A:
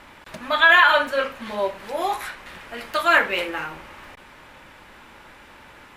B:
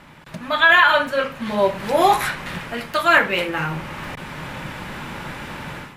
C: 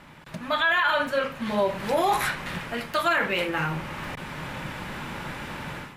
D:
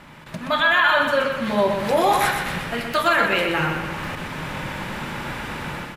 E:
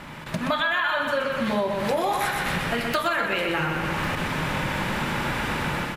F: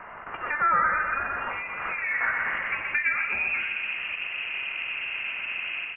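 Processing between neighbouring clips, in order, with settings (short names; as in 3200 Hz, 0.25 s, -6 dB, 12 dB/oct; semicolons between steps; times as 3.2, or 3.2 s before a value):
bell 150 Hz +14 dB 0.92 oct; AGC gain up to 14 dB; gain -1 dB
limiter -11 dBFS, peak gain reduction 9 dB; gain -3 dB
feedback echo 0.124 s, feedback 46%, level -6 dB; gain +4 dB
compressor 6:1, threshold -27 dBFS, peak gain reduction 12.5 dB; gain +5 dB
band-pass sweep 1900 Hz -> 440 Hz, 1.64–4.06; inverted band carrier 3000 Hz; gain +5 dB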